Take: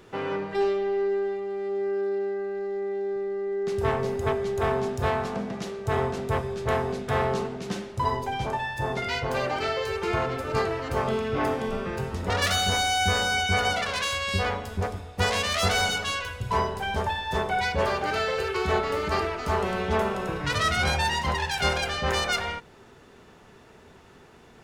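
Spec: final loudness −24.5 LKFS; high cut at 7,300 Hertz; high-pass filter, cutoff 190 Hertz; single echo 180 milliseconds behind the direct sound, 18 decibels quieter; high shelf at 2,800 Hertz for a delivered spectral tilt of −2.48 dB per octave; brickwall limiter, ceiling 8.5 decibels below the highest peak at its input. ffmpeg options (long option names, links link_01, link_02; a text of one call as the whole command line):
ffmpeg -i in.wav -af "highpass=190,lowpass=7300,highshelf=frequency=2800:gain=-8,alimiter=limit=-21dB:level=0:latency=1,aecho=1:1:180:0.126,volume=6dB" out.wav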